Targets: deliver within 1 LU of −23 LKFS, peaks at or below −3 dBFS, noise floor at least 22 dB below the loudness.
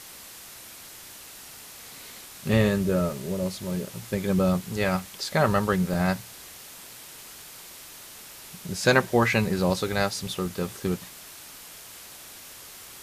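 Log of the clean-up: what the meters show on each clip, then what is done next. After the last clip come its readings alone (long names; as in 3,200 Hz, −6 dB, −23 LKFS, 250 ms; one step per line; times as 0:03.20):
number of dropouts 3; longest dropout 1.9 ms; background noise floor −45 dBFS; target noise floor −48 dBFS; integrated loudness −25.5 LKFS; sample peak −3.5 dBFS; target loudness −23.0 LKFS
→ repair the gap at 0:03.13/0:05.94/0:10.46, 1.9 ms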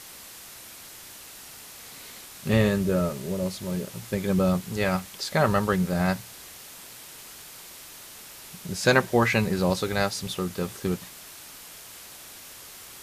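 number of dropouts 0; background noise floor −45 dBFS; target noise floor −48 dBFS
→ noise reduction from a noise print 6 dB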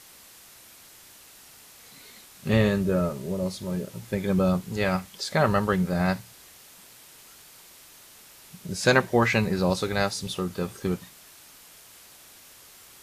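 background noise floor −51 dBFS; integrated loudness −26.0 LKFS; sample peak −3.5 dBFS; target loudness −23.0 LKFS
→ level +3 dB
brickwall limiter −3 dBFS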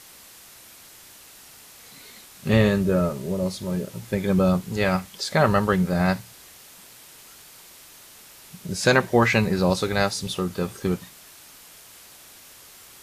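integrated loudness −23.0 LKFS; sample peak −3.0 dBFS; background noise floor −48 dBFS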